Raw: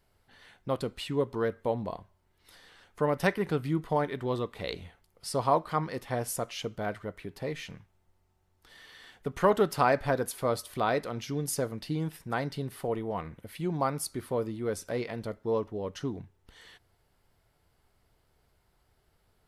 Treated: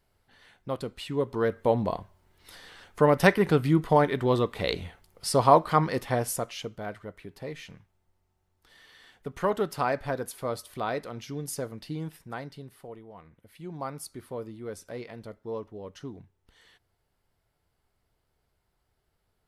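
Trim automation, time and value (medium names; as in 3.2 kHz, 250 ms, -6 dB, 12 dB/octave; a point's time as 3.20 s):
1.00 s -1.5 dB
1.77 s +7 dB
5.98 s +7 dB
6.80 s -3 dB
12.08 s -3 dB
13.13 s -14.5 dB
13.89 s -6 dB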